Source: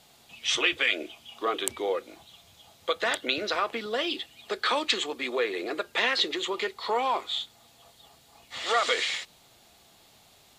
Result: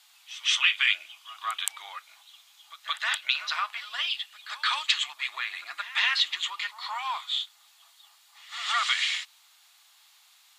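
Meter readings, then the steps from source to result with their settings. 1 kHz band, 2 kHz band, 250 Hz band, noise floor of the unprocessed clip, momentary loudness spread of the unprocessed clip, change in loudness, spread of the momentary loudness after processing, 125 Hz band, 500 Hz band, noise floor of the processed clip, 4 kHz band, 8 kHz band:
−3.0 dB, +1.5 dB, below −40 dB, −59 dBFS, 10 LU, +0.5 dB, 16 LU, can't be measured, −26.5 dB, −60 dBFS, +2.5 dB, +0.5 dB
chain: inverse Chebyshev high-pass filter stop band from 500 Hz, stop band 40 dB
backwards echo 171 ms −15.5 dB
dynamic equaliser 2,900 Hz, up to +4 dB, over −37 dBFS

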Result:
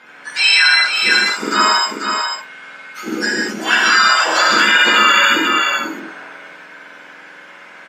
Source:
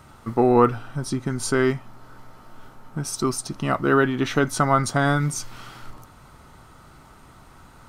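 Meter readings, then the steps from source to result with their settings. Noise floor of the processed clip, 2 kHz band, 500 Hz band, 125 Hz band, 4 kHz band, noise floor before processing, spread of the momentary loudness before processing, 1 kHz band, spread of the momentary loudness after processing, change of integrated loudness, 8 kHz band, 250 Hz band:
−40 dBFS, +17.5 dB, −3.5 dB, below −15 dB, +23.0 dB, −49 dBFS, 14 LU, +9.5 dB, 16 LU, +10.0 dB, +7.5 dB, −2.0 dB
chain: frequency axis turned over on the octave scale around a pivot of 1,400 Hz
band-pass filter 480–2,700 Hz
tilt shelving filter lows −5 dB
single-tap delay 490 ms −6 dB
reverb whose tail is shaped and stops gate 230 ms flat, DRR −3 dB
boost into a limiter +12 dB
level −1 dB

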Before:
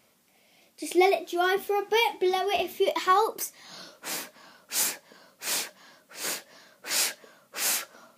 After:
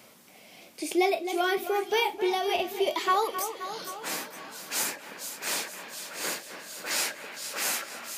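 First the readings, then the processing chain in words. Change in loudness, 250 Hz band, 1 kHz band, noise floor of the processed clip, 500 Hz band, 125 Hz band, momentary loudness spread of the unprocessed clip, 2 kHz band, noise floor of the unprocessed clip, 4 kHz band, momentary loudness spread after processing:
−2.5 dB, −1.5 dB, −2.0 dB, −54 dBFS, −2.0 dB, can't be measured, 18 LU, −0.5 dB, −65 dBFS, −1.0 dB, 12 LU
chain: echo with a time of its own for lows and highs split 3,000 Hz, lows 263 ms, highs 459 ms, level −12 dB
multiband upward and downward compressor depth 40%
level −1.5 dB

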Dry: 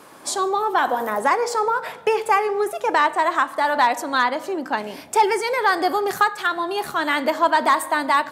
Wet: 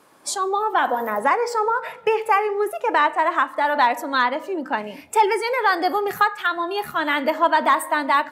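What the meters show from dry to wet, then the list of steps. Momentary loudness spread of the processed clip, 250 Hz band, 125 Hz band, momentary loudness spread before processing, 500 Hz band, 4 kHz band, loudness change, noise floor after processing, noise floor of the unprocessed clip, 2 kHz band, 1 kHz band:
6 LU, −0.5 dB, can't be measured, 6 LU, −0.5 dB, −1.5 dB, 0.0 dB, −45 dBFS, −41 dBFS, 0.0 dB, 0.0 dB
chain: noise reduction from a noise print of the clip's start 9 dB

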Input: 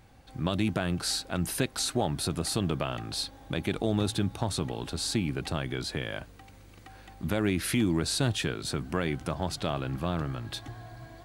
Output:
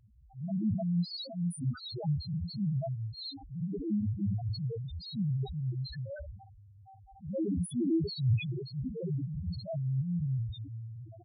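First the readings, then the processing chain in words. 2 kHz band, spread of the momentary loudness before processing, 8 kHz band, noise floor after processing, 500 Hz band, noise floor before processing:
−17.0 dB, 11 LU, −19.0 dB, −56 dBFS, −8.0 dB, −52 dBFS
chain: ambience of single reflections 15 ms −14.5 dB, 52 ms −13.5 dB, 69 ms −11 dB
transient designer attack −12 dB, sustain +11 dB
spectral peaks only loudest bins 1
level +5.5 dB

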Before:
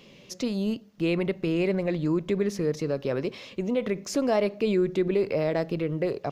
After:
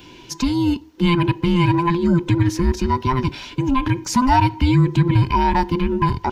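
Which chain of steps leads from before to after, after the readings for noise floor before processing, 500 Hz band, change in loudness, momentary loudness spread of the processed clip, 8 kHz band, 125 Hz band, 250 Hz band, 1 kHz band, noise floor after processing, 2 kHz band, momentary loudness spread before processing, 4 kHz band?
−52 dBFS, −0.5 dB, +8.5 dB, 6 LU, +9.0 dB, +15.0 dB, +9.0 dB, +19.5 dB, −43 dBFS, +9.0 dB, 6 LU, +10.5 dB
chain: frequency inversion band by band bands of 500 Hz
level +9 dB

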